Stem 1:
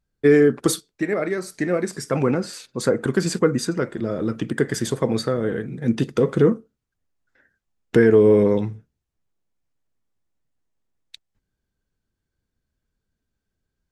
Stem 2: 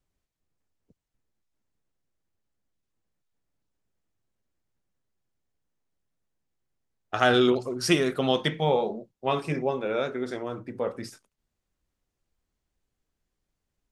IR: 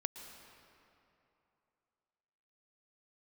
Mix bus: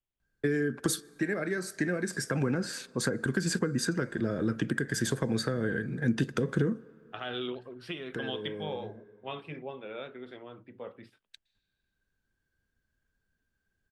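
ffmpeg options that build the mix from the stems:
-filter_complex "[0:a]equalizer=f=1.6k:w=6.6:g=14.5,acompressor=threshold=-19dB:ratio=3,adelay=200,volume=-3.5dB,asplit=2[a][b];[b]volume=-20dB[c];[1:a]highshelf=f=4.5k:t=q:w=3:g=-12,alimiter=limit=-9.5dB:level=0:latency=1:release=227,volume=-13.5dB,asplit=2[d][e];[e]apad=whole_len=622315[f];[a][f]sidechaincompress=threshold=-54dB:ratio=8:attack=47:release=1130[g];[2:a]atrim=start_sample=2205[h];[c][h]afir=irnorm=-1:irlink=0[i];[g][d][i]amix=inputs=3:normalize=0,acrossover=split=290|3000[j][k][l];[k]acompressor=threshold=-32dB:ratio=6[m];[j][m][l]amix=inputs=3:normalize=0"

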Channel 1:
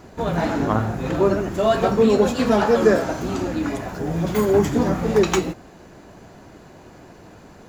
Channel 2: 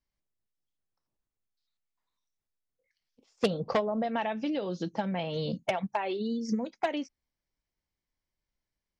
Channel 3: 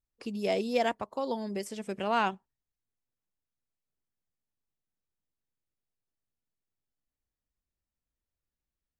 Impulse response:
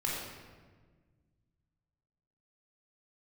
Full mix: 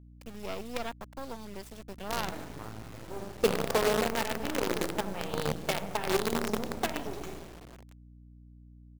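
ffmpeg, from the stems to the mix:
-filter_complex "[0:a]adelay=1900,volume=-16.5dB,asplit=2[a][b];[b]volume=-12dB[c];[1:a]equalizer=f=400:t=o:w=0.41:g=7,volume=-6dB,asplit=2[d][e];[e]volume=-5.5dB[f];[2:a]volume=-5.5dB,asplit=2[g][h];[h]apad=whole_len=422827[i];[a][i]sidechaingate=range=-10dB:threshold=-52dB:ratio=16:detection=peak[j];[3:a]atrim=start_sample=2205[k];[c][f]amix=inputs=2:normalize=0[l];[l][k]afir=irnorm=-1:irlink=0[m];[j][d][g][m]amix=inputs=4:normalize=0,acrusher=bits=5:dc=4:mix=0:aa=0.000001,aeval=exprs='val(0)+0.00282*(sin(2*PI*60*n/s)+sin(2*PI*2*60*n/s)/2+sin(2*PI*3*60*n/s)/3+sin(2*PI*4*60*n/s)/4+sin(2*PI*5*60*n/s)/5)':c=same"

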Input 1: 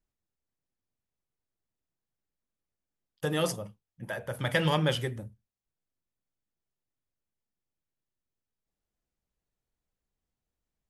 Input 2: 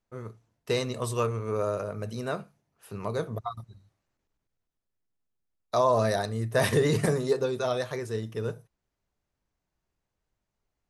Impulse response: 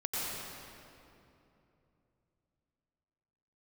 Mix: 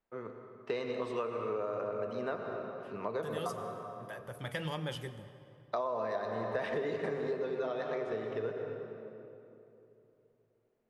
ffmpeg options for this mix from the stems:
-filter_complex "[0:a]volume=-10.5dB,asplit=2[a][b];[b]volume=-19dB[c];[1:a]lowpass=6.5k,acrossover=split=220 3300:gain=0.126 1 0.126[d][e][f];[d][e][f]amix=inputs=3:normalize=0,volume=-2.5dB,asplit=2[g][h];[h]volume=-8dB[i];[2:a]atrim=start_sample=2205[j];[c][i]amix=inputs=2:normalize=0[k];[k][j]afir=irnorm=-1:irlink=0[l];[a][g][l]amix=inputs=3:normalize=0,acompressor=threshold=-32dB:ratio=6"

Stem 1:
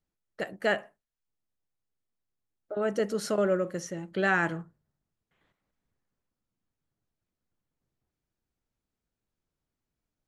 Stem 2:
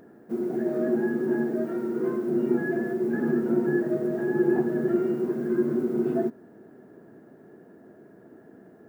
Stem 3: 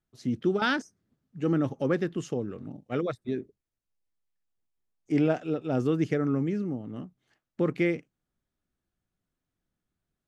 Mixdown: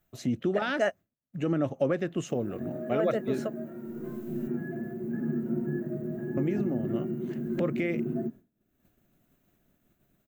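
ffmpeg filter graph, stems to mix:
-filter_complex "[0:a]adelay=150,volume=-4.5dB[a];[1:a]asubboost=boost=11.5:cutoff=180,adelay=2000,volume=-13dB[b];[2:a]acompressor=mode=upward:threshold=-32dB:ratio=2.5,volume=1dB,asplit=3[c][d][e];[c]atrim=end=4.48,asetpts=PTS-STARTPTS,afade=t=out:st=4.476:d=0.004:c=hsin[f];[d]atrim=start=4.48:end=6.37,asetpts=PTS-STARTPTS,volume=0[g];[e]atrim=start=6.37,asetpts=PTS-STARTPTS,afade=t=in:d=0.004:c=hsin[h];[f][g][h]concat=n=3:v=0:a=1,asplit=2[i][j];[j]apad=whole_len=459568[k];[a][k]sidechaingate=range=-33dB:threshold=-39dB:ratio=16:detection=peak[l];[b][i]amix=inputs=2:normalize=0,highshelf=f=4k:g=11,alimiter=limit=-19dB:level=0:latency=1:release=147,volume=0dB[m];[l][m]amix=inputs=2:normalize=0,superequalizer=8b=2.24:13b=0.562:14b=0.282:15b=0.447:16b=0.282,agate=range=-33dB:threshold=-38dB:ratio=3:detection=peak"

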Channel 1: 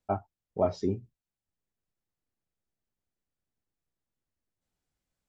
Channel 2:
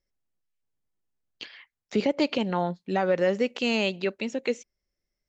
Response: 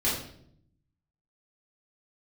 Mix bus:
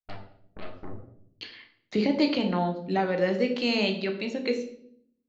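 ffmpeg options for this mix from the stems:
-filter_complex "[0:a]afwtdn=0.00501,acompressor=threshold=-41dB:ratio=2.5,aeval=exprs='0.0562*(cos(1*acos(clip(val(0)/0.0562,-1,1)))-cos(1*PI/2))+0.02*(cos(8*acos(clip(val(0)/0.0562,-1,1)))-cos(8*PI/2))':c=same,volume=-9.5dB,asplit=2[a][b];[b]volume=-10.5dB[c];[1:a]agate=range=-33dB:threshold=-51dB:ratio=3:detection=peak,volume=-3.5dB,asplit=2[d][e];[e]volume=-12.5dB[f];[2:a]atrim=start_sample=2205[g];[c][f]amix=inputs=2:normalize=0[h];[h][g]afir=irnorm=-1:irlink=0[i];[a][d][i]amix=inputs=3:normalize=0,lowpass=5.6k,equalizer=f=4.3k:t=o:w=0.29:g=6"

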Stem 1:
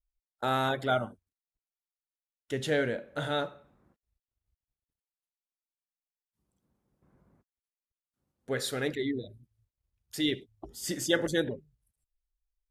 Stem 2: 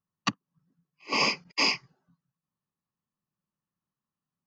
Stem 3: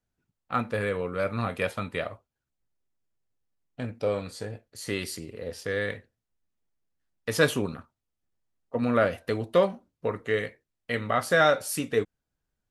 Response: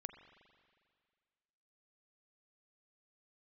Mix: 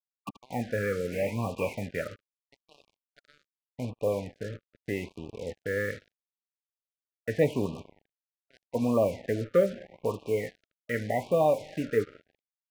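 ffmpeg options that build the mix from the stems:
-filter_complex "[0:a]aeval=exprs='sgn(val(0))*max(abs(val(0))-0.0112,0)':c=same,bandpass=f=1.6k:t=q:w=0.82:csg=0,acompressor=threshold=-45dB:ratio=3,volume=-7dB,asplit=2[a][b];[b]volume=-7dB[c];[1:a]volume=-9.5dB,asplit=2[d][e];[e]volume=-14.5dB[f];[2:a]volume=-3.5dB,asplit=2[g][h];[h]volume=-3.5dB[i];[3:a]atrim=start_sample=2205[j];[i][j]afir=irnorm=-1:irlink=0[k];[c][f]amix=inputs=2:normalize=0,aecho=0:1:77:1[l];[a][d][g][k][l]amix=inputs=5:normalize=0,lowpass=f=2.2k:w=0.5412,lowpass=f=2.2k:w=1.3066,acrusher=bits=6:mix=0:aa=0.5,afftfilt=real='re*(1-between(b*sr/1024,840*pow(1700/840,0.5+0.5*sin(2*PI*0.81*pts/sr))/1.41,840*pow(1700/840,0.5+0.5*sin(2*PI*0.81*pts/sr))*1.41))':imag='im*(1-between(b*sr/1024,840*pow(1700/840,0.5+0.5*sin(2*PI*0.81*pts/sr))/1.41,840*pow(1700/840,0.5+0.5*sin(2*PI*0.81*pts/sr))*1.41))':win_size=1024:overlap=0.75"

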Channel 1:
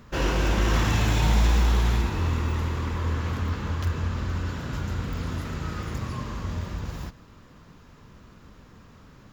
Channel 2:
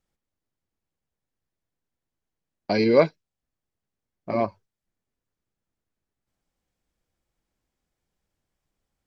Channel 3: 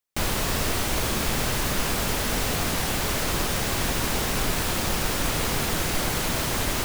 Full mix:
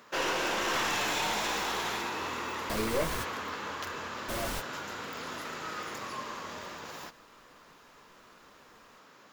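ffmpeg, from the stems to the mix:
-filter_complex "[0:a]highpass=490,volume=1dB[a];[1:a]flanger=delay=18.5:depth=5:speed=0.34,volume=-9dB,asplit=2[b][c];[2:a]adelay=2150,volume=-10.5dB[d];[c]apad=whole_len=400874[e];[d][e]sidechaingate=range=-33dB:threshold=-51dB:ratio=16:detection=peak[f];[a][b][f]amix=inputs=3:normalize=0,aeval=exprs='clip(val(0),-1,0.0355)':c=same"

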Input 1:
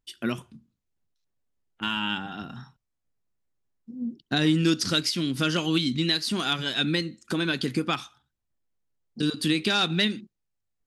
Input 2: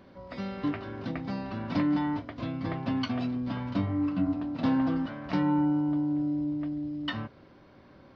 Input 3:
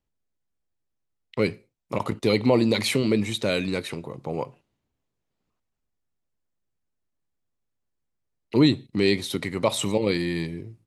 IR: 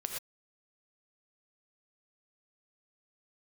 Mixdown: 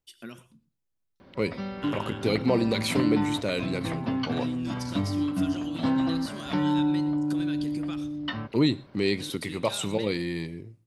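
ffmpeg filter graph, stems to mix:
-filter_complex "[0:a]highshelf=f=6.5k:g=8,acompressor=threshold=-27dB:ratio=6,volume=-12.5dB,asplit=2[a][b];[b]volume=-9.5dB[c];[1:a]adelay=1200,volume=1dB[d];[2:a]volume=-5dB,asplit=2[e][f];[f]volume=-21dB[g];[3:a]atrim=start_sample=2205[h];[c][g]amix=inputs=2:normalize=0[i];[i][h]afir=irnorm=-1:irlink=0[j];[a][d][e][j]amix=inputs=4:normalize=0"

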